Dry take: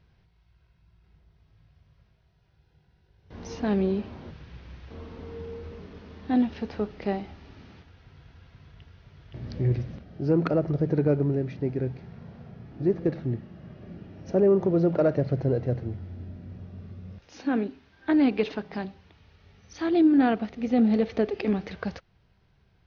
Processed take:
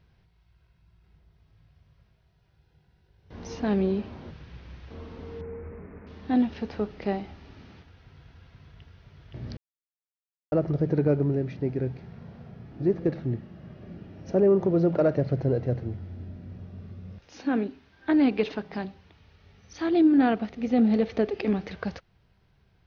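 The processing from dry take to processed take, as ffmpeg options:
ffmpeg -i in.wav -filter_complex "[0:a]asettb=1/sr,asplit=3[link_01][link_02][link_03];[link_01]atrim=end=5.414[link_04];[link_02]atrim=start=5.41:end=6.07,asetpts=PTS-STARTPTS,afade=type=in:duration=0.004:curve=qsin,afade=type=out:start_time=0.656:duration=0.004:curve=qsin,asuperstop=centerf=4600:order=12:qfactor=0.77[link_05];[link_03]atrim=start=6.066[link_06];[link_04][link_05]acrossfade=duration=0.004:curve1=hsin:curve2=qsin[link_07];[link_07][link_06]acrossfade=duration=0.004:curve1=qsin:curve2=hsin,asplit=3[link_08][link_09][link_10];[link_08]atrim=end=9.57,asetpts=PTS-STARTPTS,afade=type=out:start_time=9.566:duration=0.004:curve=hsin[link_11];[link_09]atrim=start=9.57:end=10.52,asetpts=PTS-STARTPTS,volume=0[link_12];[link_10]atrim=start=10.52,asetpts=PTS-STARTPTS,afade=type=in:duration=0.004:curve=hsin[link_13];[link_11][link_12][link_13]concat=n=3:v=0:a=1" out.wav

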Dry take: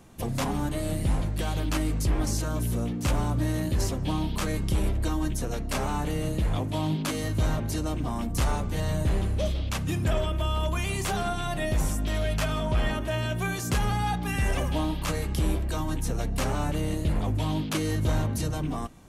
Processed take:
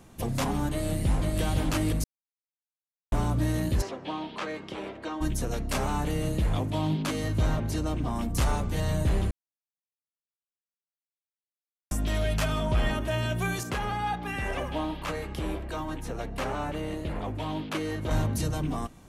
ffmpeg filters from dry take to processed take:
ffmpeg -i in.wav -filter_complex "[0:a]asplit=2[link_01][link_02];[link_02]afade=type=in:start_time=0.7:duration=0.01,afade=type=out:start_time=1.41:duration=0.01,aecho=0:1:510|1020|1530|2040|2550|3060|3570:0.707946|0.353973|0.176986|0.0884932|0.0442466|0.0221233|0.0110617[link_03];[link_01][link_03]amix=inputs=2:normalize=0,asplit=3[link_04][link_05][link_06];[link_04]afade=type=out:start_time=3.81:duration=0.02[link_07];[link_05]highpass=380,lowpass=3200,afade=type=in:start_time=3.81:duration=0.02,afade=type=out:start_time=5.2:duration=0.02[link_08];[link_06]afade=type=in:start_time=5.2:duration=0.02[link_09];[link_07][link_08][link_09]amix=inputs=3:normalize=0,asettb=1/sr,asplit=3[link_10][link_11][link_12];[link_10]atrim=end=6.704[link_13];[link_11]atrim=start=6.7:end=8.15,asetpts=PTS-STARTPTS,afade=type=in:duration=0.004:curve=qsin,afade=type=out:start_time=1.446:duration=0.004:curve=qsin,highshelf=frequency=6400:gain=-6.5[link_14];[link_12]atrim=start=8.146[link_15];[link_13][link_14]acrossfade=duration=0.004:curve1=hsin:curve2=qsin[link_16];[link_16][link_15]acrossfade=duration=0.004:curve1=qsin:curve2=hsin,asettb=1/sr,asplit=3[link_17][link_18][link_19];[link_17]atrim=end=13.634[link_20];[link_18]atrim=start=13.63:end=18.11,asetpts=PTS-STARTPTS,afade=type=in:duration=0.004:curve=qsin,afade=type=out:start_time=4.476:duration=0.004:curve=qsin,bass=frequency=250:gain=-9,treble=frequency=4000:gain=-11[link_21];[link_19]atrim=start=18.106[link_22];[link_20][link_21]acrossfade=duration=0.004:curve1=hsin:curve2=qsin[link_23];[link_23][link_22]acrossfade=duration=0.004:curve1=qsin:curve2=hsin,asplit=5[link_24][link_25][link_26][link_27][link_28];[link_24]atrim=end=2.04,asetpts=PTS-STARTPTS,afade=type=out:start_time=2.036:duration=0.004:curve=hsin[link_29];[link_25]atrim=start=2.04:end=3.12,asetpts=PTS-STARTPTS,volume=0[link_30];[link_26]atrim=start=3.12:end=9.31,asetpts=PTS-STARTPTS,afade=type=in:duration=0.004:curve=hsin,afade=type=out:start_time=6.186:duration=0.004:curve=hsin[link_31];[link_27]atrim=start=9.31:end=11.91,asetpts=PTS-STARTPTS,volume=0[link_32];[link_28]atrim=start=11.91,asetpts=PTS-STARTPTS,afade=type=in:duration=0.004:curve=hsin[link_33];[link_29][link_30][link_31][link_32][link_33]concat=n=5:v=0:a=1" out.wav

